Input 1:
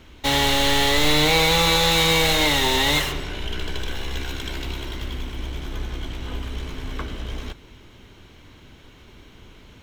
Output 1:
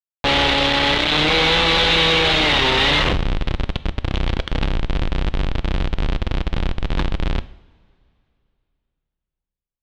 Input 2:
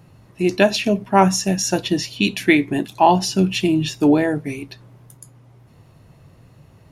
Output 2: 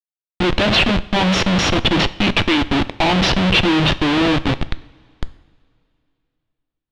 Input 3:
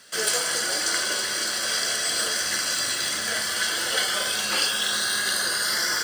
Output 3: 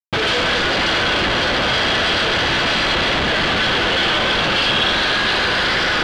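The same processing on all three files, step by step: dynamic EQ 110 Hz, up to -4 dB, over -44 dBFS, Q 4.4; in parallel at +1 dB: limiter -13 dBFS; on the sum: Schmitt trigger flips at -18 dBFS; synth low-pass 3400 Hz, resonance Q 2.2; two-slope reverb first 0.62 s, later 2.8 s, from -18 dB, DRR 14 dB

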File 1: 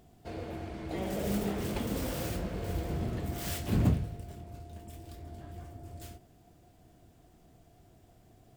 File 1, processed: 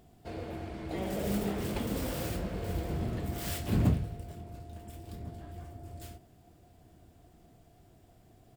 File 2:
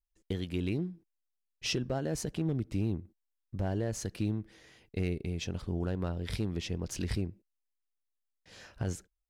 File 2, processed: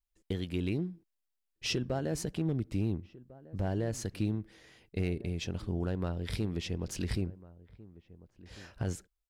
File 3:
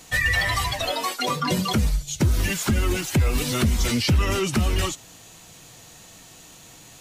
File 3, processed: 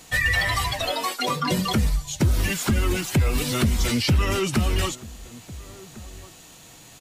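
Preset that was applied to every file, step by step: bell 6200 Hz -2.5 dB 0.23 oct; outdoor echo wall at 240 m, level -19 dB

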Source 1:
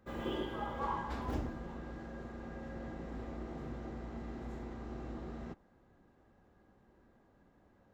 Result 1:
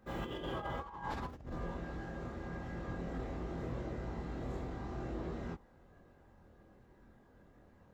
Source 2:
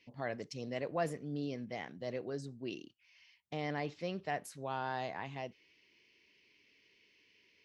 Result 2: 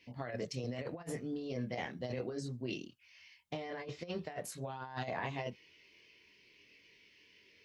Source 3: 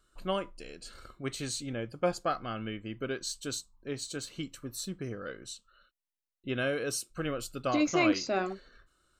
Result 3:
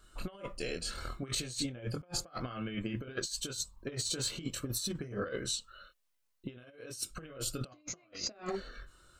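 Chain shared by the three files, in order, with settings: chorus voices 4, 0.23 Hz, delay 24 ms, depth 1.2 ms; negative-ratio compressor -44 dBFS, ratio -0.5; gain +5 dB

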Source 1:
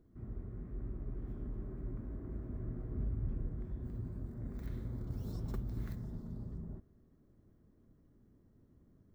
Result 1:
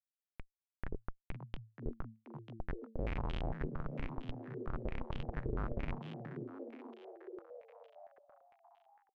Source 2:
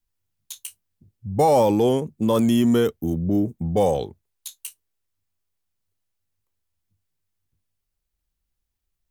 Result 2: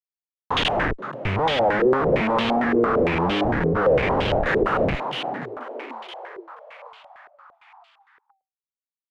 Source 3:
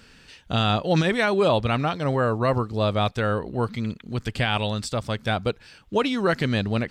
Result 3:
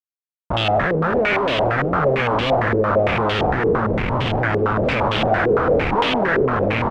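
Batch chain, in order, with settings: spectral trails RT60 1.52 s; in parallel at -1 dB: compressor 16:1, threshold -26 dBFS; on the sum: Schmitt trigger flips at -25.5 dBFS; frequency-shifting echo 0.479 s, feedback 59%, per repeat +110 Hz, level -10 dB; stepped low-pass 8.8 Hz 420–3100 Hz; gain -3 dB

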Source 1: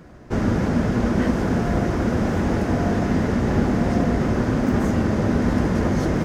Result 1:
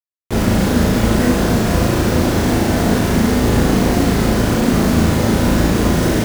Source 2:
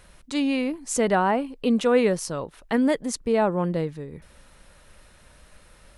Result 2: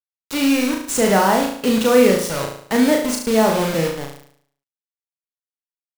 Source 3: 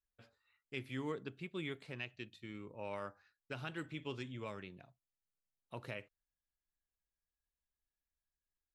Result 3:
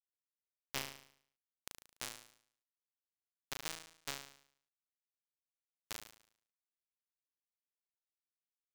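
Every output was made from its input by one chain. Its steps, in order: bit-crush 5-bit; flutter echo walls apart 6.2 m, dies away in 0.6 s; gain +3.5 dB

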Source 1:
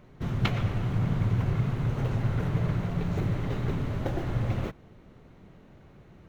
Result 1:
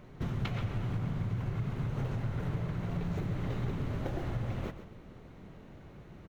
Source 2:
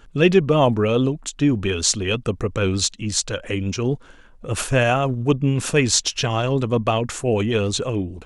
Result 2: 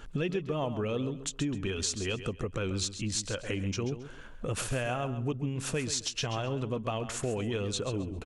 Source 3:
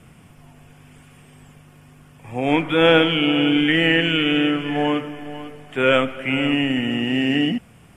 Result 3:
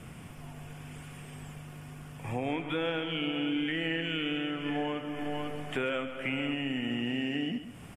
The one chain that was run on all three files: compressor 5:1, threshold -33 dBFS; on a send: feedback echo 0.134 s, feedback 23%, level -11.5 dB; on the sum: gain +1.5 dB

